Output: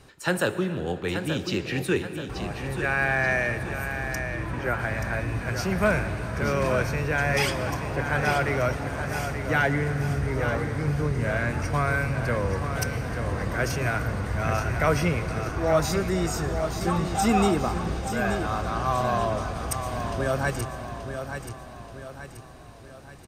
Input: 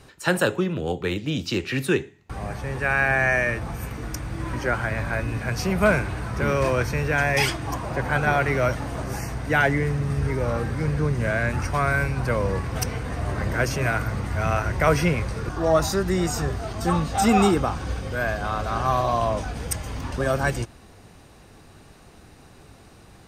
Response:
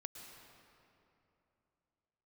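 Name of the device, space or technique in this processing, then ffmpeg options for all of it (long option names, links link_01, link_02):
saturated reverb return: -filter_complex "[0:a]asplit=2[link_01][link_02];[1:a]atrim=start_sample=2205[link_03];[link_02][link_03]afir=irnorm=-1:irlink=0,asoftclip=type=tanh:threshold=-17.5dB,volume=0dB[link_04];[link_01][link_04]amix=inputs=2:normalize=0,asettb=1/sr,asplit=3[link_05][link_06][link_07];[link_05]atrim=end=4.194[link_08];[link_06]atrim=start=4.19:end=4.8,asetpts=PTS-STARTPTS,afade=type=in:duration=0.004:curve=qsin,afade=type=out:start_time=0.606:duration=0.004:curve=qsin,acrossover=split=3700[link_09][link_10];[link_10]acompressor=threshold=-54dB:ratio=4:attack=1:release=60[link_11];[link_09][link_11]amix=inputs=2:normalize=0[link_12];[link_07]atrim=start=4.796[link_13];[link_08][link_12]acrossfade=duration=0.004:curve1=hsin:curve2=qsin[link_14];[link_14][link_13]acrossfade=duration=0.004:curve1=qsin:curve2=hsin,aecho=1:1:880|1760|2640|3520|4400:0.398|0.183|0.0842|0.0388|0.0178,volume=-6.5dB"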